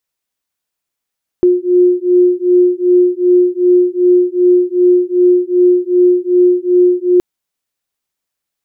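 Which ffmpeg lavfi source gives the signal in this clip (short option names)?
-f lavfi -i "aevalsrc='0.299*(sin(2*PI*357*t)+sin(2*PI*359.6*t))':d=5.77:s=44100"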